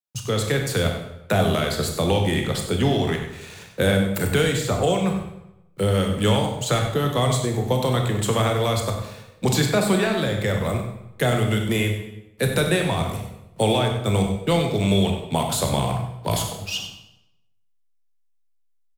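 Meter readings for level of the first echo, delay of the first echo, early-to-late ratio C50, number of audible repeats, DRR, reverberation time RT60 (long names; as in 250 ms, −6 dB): −11.0 dB, 97 ms, 5.0 dB, 1, 2.0 dB, 0.85 s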